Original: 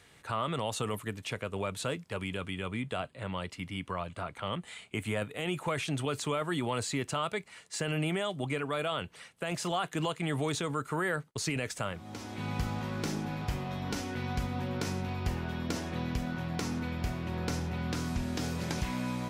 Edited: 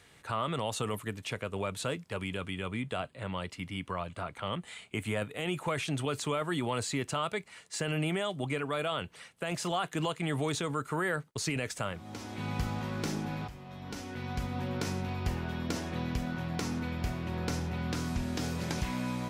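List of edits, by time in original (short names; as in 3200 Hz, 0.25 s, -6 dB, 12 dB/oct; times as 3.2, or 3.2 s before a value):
13.48–14.67 fade in, from -14.5 dB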